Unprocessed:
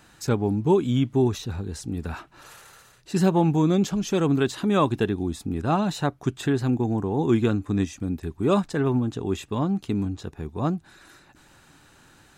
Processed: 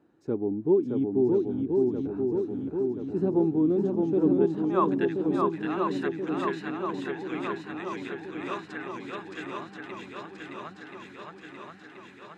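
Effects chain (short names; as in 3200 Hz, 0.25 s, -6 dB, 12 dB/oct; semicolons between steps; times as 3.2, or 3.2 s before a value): band-pass sweep 340 Hz -> 2000 Hz, 4.35–5.05; swung echo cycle 1.03 s, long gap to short 1.5:1, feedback 64%, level -3 dB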